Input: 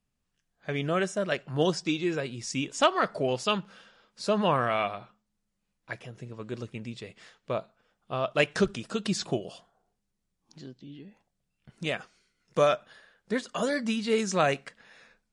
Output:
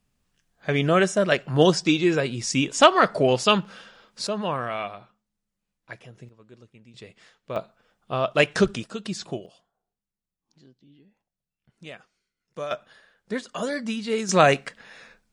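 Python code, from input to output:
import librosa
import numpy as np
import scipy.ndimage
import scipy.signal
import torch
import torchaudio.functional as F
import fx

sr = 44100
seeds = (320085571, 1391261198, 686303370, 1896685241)

y = fx.gain(x, sr, db=fx.steps((0.0, 8.0), (4.27, -2.5), (6.29, -13.5), (6.94, -2.0), (7.56, 5.0), (8.84, -2.5), (9.46, -10.0), (12.71, 0.0), (14.29, 8.0)))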